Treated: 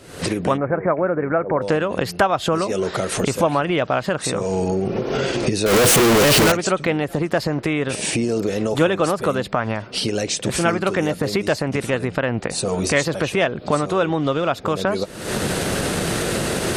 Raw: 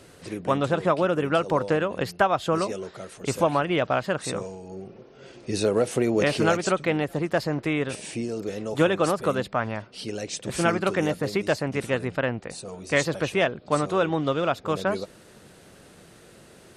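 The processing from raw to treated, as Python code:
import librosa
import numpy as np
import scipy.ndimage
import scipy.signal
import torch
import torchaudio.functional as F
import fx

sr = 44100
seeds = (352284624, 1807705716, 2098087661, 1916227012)

y = fx.clip_1bit(x, sr, at=(5.66, 6.52))
y = fx.recorder_agc(y, sr, target_db=-17.0, rise_db_per_s=72.0, max_gain_db=30)
y = fx.cheby_ripple(y, sr, hz=2300.0, ripple_db=3, at=(0.56, 1.61), fade=0.02)
y = y * librosa.db_to_amplitude(3.5)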